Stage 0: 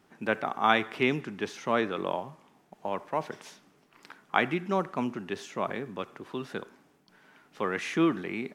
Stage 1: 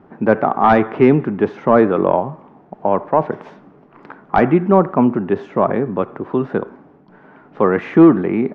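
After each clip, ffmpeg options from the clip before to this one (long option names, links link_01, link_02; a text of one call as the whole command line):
ffmpeg -i in.wav -af "aeval=exprs='0.447*sin(PI/2*2.51*val(0)/0.447)':channel_layout=same,lowpass=1000,volume=6dB" out.wav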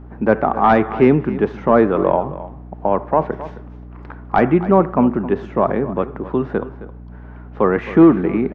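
ffmpeg -i in.wav -af "aeval=exprs='val(0)+0.0178*(sin(2*PI*60*n/s)+sin(2*PI*2*60*n/s)/2+sin(2*PI*3*60*n/s)/3+sin(2*PI*4*60*n/s)/4+sin(2*PI*5*60*n/s)/5)':channel_layout=same,aecho=1:1:266:0.168,volume=-1dB" out.wav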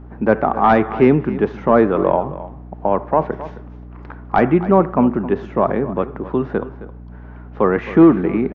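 ffmpeg -i in.wav -af "aresample=16000,aresample=44100" out.wav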